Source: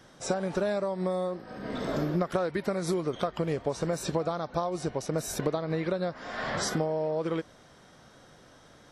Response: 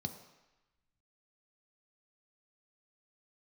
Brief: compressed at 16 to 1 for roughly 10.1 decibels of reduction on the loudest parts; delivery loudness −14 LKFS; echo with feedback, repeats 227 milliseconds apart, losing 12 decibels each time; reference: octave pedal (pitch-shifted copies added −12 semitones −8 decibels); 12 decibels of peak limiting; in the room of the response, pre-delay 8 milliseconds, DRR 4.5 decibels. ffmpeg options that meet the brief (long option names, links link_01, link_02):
-filter_complex "[0:a]acompressor=threshold=-34dB:ratio=16,alimiter=level_in=12dB:limit=-24dB:level=0:latency=1,volume=-12dB,aecho=1:1:227|454|681:0.251|0.0628|0.0157,asplit=2[link_01][link_02];[1:a]atrim=start_sample=2205,adelay=8[link_03];[link_02][link_03]afir=irnorm=-1:irlink=0,volume=-4dB[link_04];[link_01][link_04]amix=inputs=2:normalize=0,asplit=2[link_05][link_06];[link_06]asetrate=22050,aresample=44100,atempo=2,volume=-8dB[link_07];[link_05][link_07]amix=inputs=2:normalize=0,volume=26.5dB"